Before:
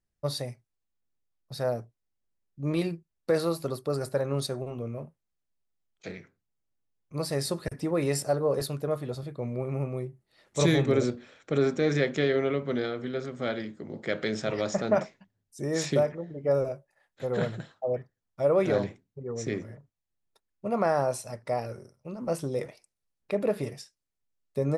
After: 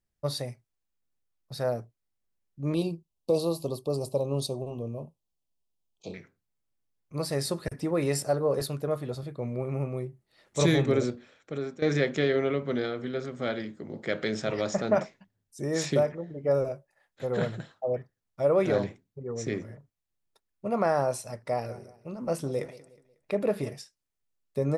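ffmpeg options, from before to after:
-filter_complex "[0:a]asettb=1/sr,asplit=3[a][b][c];[a]atrim=end=2.744[d];[b]atrim=start=2.74:end=6.14,asetpts=PTS-STARTPTS,afade=t=in:d=0.004:c=qsin,afade=t=out:st=3.396:d=0.004:c=qsin,asuperstop=centerf=1700:order=8:qfactor=1.1[e];[c]atrim=start=6.136[f];[d][e]acrossfade=d=0.004:c1=hsin:c2=qsin[g];[g][f]acrossfade=d=0.004:c1=qsin:c2=hsin,asettb=1/sr,asplit=3[h][i][j];[h]atrim=end=21.304[k];[i]atrim=start=21.3:end=23.73,asetpts=PTS-STARTPTS,afade=t=in:d=0.004:c=qsin,afade=t=out:st=2.426:d=0.004:c=qsin,aecho=1:1:182|364|546:0.112|0.0438|0.0171,atrim=end_sample=107163[l];[j]atrim=start=23.726[m];[k][l]acrossfade=d=0.004:c1=hsin:c2=qsin[n];[n][m]acrossfade=d=0.004:c1=qsin:c2=hsin,asplit=2[o][p];[o]atrim=end=11.82,asetpts=PTS-STARTPTS,afade=t=out:st=10.86:d=0.96:silence=0.177828[q];[p]atrim=start=11.82,asetpts=PTS-STARTPTS,afade=t=in:d=0.004:c=hsin:silence=0.177828[r];[q][r]concat=n=2:v=0:a=1"

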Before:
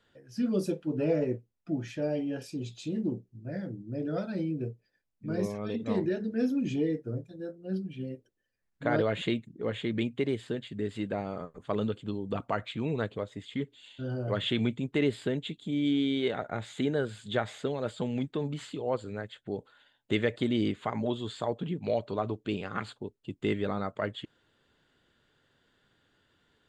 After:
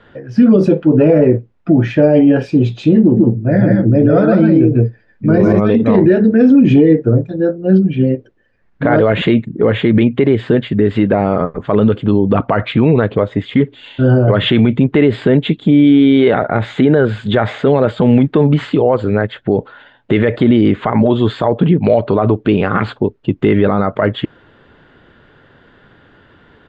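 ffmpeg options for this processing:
-filter_complex "[0:a]asplit=3[a][b][c];[a]afade=t=out:st=3.16:d=0.02[d];[b]aecho=1:1:146|155:0.562|0.596,afade=t=in:st=3.16:d=0.02,afade=t=out:st=5.59:d=0.02[e];[c]afade=t=in:st=5.59:d=0.02[f];[d][e][f]amix=inputs=3:normalize=0,lowpass=2k,alimiter=level_in=25.5dB:limit=-1dB:release=50:level=0:latency=1,volume=-1dB"

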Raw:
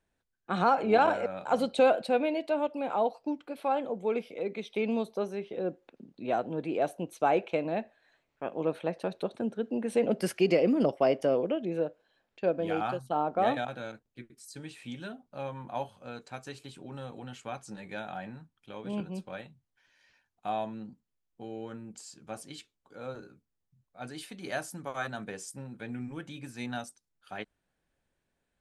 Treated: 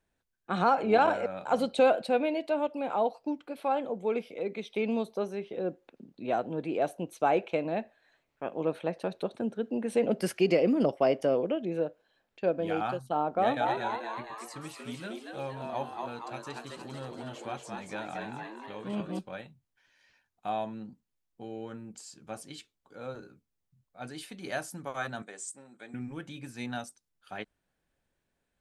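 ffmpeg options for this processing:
-filter_complex "[0:a]asettb=1/sr,asplit=3[a][b][c];[a]atrim=end=13.354[d];[b]atrim=start=13.35:end=19.19,asetpts=PTS-STARTPTS,afade=t=in:d=0.004:c=qsin,afade=t=out:st=5.836:d=0.004:c=qsin,asplit=8[e][f][g][h][i][j][k][l];[f]adelay=233,afreqshift=110,volume=-3.5dB[m];[g]adelay=466,afreqshift=220,volume=-9dB[n];[h]adelay=699,afreqshift=330,volume=-14.5dB[o];[i]adelay=932,afreqshift=440,volume=-20dB[p];[j]adelay=1165,afreqshift=550,volume=-25.6dB[q];[k]adelay=1398,afreqshift=660,volume=-31.1dB[r];[l]adelay=1631,afreqshift=770,volume=-36.6dB[s];[e][m][n][o][p][q][r][s]amix=inputs=8:normalize=0,atrim=end_sample=257544[t];[c]atrim=start=19.186[u];[d][t]acrossfade=d=0.004:c1=hsin:c2=qsin[v];[v][u]acrossfade=d=0.004:c1=qsin:c2=hsin,asettb=1/sr,asplit=3[w][x][y];[w]atrim=end=25.224[z];[x]atrim=start=25.22:end=25.94,asetpts=PTS-STARTPTS,afade=t=in:d=0.004:c=qsin,afade=t=out:st=0.716:d=0.004:c=qsin,highpass=430,equalizer=f=480:t=q:w=4:g=-7,equalizer=f=930:t=q:w=4:g=-6,equalizer=f=1.6k:t=q:w=4:g=-4,equalizer=f=2.7k:t=q:w=4:g=-8,equalizer=f=5.1k:t=q:w=4:g=-8,equalizer=f=7.9k:t=q:w=4:g=10,lowpass=f=9.4k:w=0.5412,lowpass=f=9.4k:w=1.3066[aa];[y]atrim=start=25.936[ab];[z][aa]acrossfade=d=0.004:c1=hsin:c2=qsin[ac];[ac][ab]acrossfade=d=0.004:c1=qsin:c2=hsin"

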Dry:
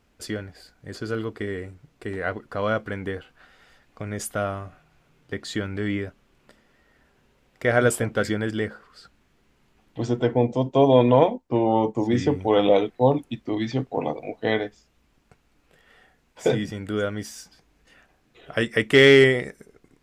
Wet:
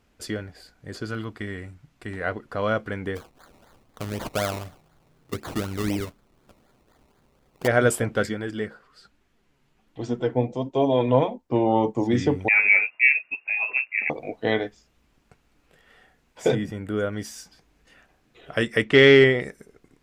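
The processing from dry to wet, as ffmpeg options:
-filter_complex "[0:a]asettb=1/sr,asplit=3[a][b][c];[a]atrim=end=1.054[d];[b]atrim=start=1.05:end=2.21,asetpts=PTS-STARTPTS,afade=t=in:d=0.004:c=qsin,afade=t=out:st=1.156:d=0.004:c=qsin,equalizer=f=440:t=o:w=0.71:g=-9.5[e];[c]atrim=start=2.206[f];[d][e]acrossfade=d=0.004:c1=hsin:c2=qsin[g];[g][f]acrossfade=d=0.004:c1=qsin:c2=hsin,asplit=3[h][i][j];[h]afade=t=out:st=3.15:d=0.02[k];[i]acrusher=samples=22:mix=1:aa=0.000001:lfo=1:lforange=13.2:lforate=4,afade=t=in:st=3.15:d=0.02,afade=t=out:st=7.66:d=0.02[l];[j]afade=t=in:st=7.66:d=0.02[m];[k][l][m]amix=inputs=3:normalize=0,asplit=3[n][o][p];[n]afade=t=out:st=8.25:d=0.02[q];[o]flanger=delay=2.3:depth=5.8:regen=52:speed=1.3:shape=triangular,afade=t=in:st=8.25:d=0.02,afade=t=out:st=11.38:d=0.02[r];[p]afade=t=in:st=11.38:d=0.02[s];[q][r][s]amix=inputs=3:normalize=0,asettb=1/sr,asplit=3[t][u][v];[t]atrim=end=12.484[w];[u]atrim=start=12.48:end=14.1,asetpts=PTS-STARTPTS,afade=t=in:d=0.004:c=qsin,afade=t=out:st=1.616:d=0.004:c=qsin,lowpass=f=2.4k:t=q:w=0.5098,lowpass=f=2.4k:t=q:w=0.6013,lowpass=f=2.4k:t=q:w=0.9,lowpass=f=2.4k:t=q:w=2.563,afreqshift=-2800[x];[v]atrim=start=14.096[y];[w][x]acrossfade=d=0.004:c1=hsin:c2=qsin[z];[z][y]acrossfade=d=0.004:c1=qsin:c2=hsin,asettb=1/sr,asplit=3[aa][ab][ac];[aa]atrim=end=16.554[ad];[ab]atrim=start=16.55:end=17.13,asetpts=PTS-STARTPTS,afade=t=in:d=0.004:c=qsin,afade=t=out:st=0.576:d=0.004:c=qsin,equalizer=f=4.9k:w=0.72:g=-8.5[ae];[ac]atrim=start=17.126[af];[ad][ae]acrossfade=d=0.004:c1=hsin:c2=qsin[ag];[ag][af]acrossfade=d=0.004:c1=qsin:c2=hsin,asettb=1/sr,asplit=3[ah][ai][aj];[ah]atrim=end=18.844[ak];[ai]atrim=start=18.84:end=19.41,asetpts=PTS-STARTPTS,afade=t=in:d=0.004:c=qsin,afade=t=out:st=0.566:d=0.004:c=qsin,lowpass=4.6k[al];[aj]atrim=start=19.406[am];[ak][al]acrossfade=d=0.004:c1=hsin:c2=qsin[an];[an][am]acrossfade=d=0.004:c1=qsin:c2=hsin"

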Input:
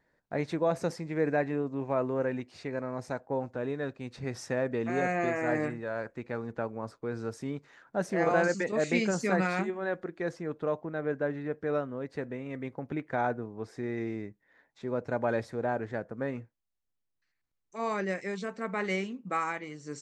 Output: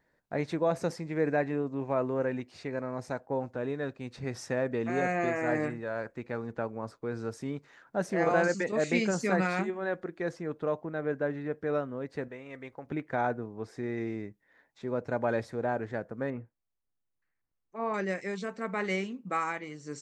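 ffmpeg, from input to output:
-filter_complex "[0:a]asettb=1/sr,asplit=3[a][b][c];[a]atrim=end=12.284[d];[b]atrim=start=12.28:end=12.87,asetpts=PTS-STARTPTS,afade=t=in:d=0.004:c=qsin,afade=t=out:st=0.586:d=0.004:c=qsin,equalizer=f=180:w=0.59:g=-11.5[e];[c]atrim=start=12.866[f];[d][e]acrossfade=d=0.004:c1=hsin:c2=qsin[g];[g][f]acrossfade=d=0.004:c1=qsin:c2=hsin,asettb=1/sr,asplit=3[h][i][j];[h]atrim=end=16.304[k];[i]atrim=start=16.3:end=17.94,asetpts=PTS-STARTPTS,afade=t=in:d=0.004:c=qsin,afade=t=out:st=1.636:d=0.004:c=qsin,lowpass=1.7k[l];[j]atrim=start=17.936[m];[k][l]acrossfade=d=0.004:c1=hsin:c2=qsin[n];[n][m]acrossfade=d=0.004:c1=qsin:c2=hsin"

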